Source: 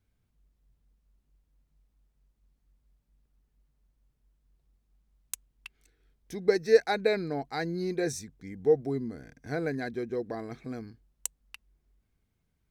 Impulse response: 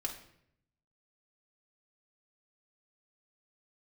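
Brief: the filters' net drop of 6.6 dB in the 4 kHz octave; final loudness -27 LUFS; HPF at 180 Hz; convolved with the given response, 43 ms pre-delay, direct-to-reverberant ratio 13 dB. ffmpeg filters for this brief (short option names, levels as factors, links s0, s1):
-filter_complex "[0:a]highpass=180,equalizer=f=4000:t=o:g=-7.5,asplit=2[s0][s1];[1:a]atrim=start_sample=2205,adelay=43[s2];[s1][s2]afir=irnorm=-1:irlink=0,volume=0.2[s3];[s0][s3]amix=inputs=2:normalize=0,volume=1.5"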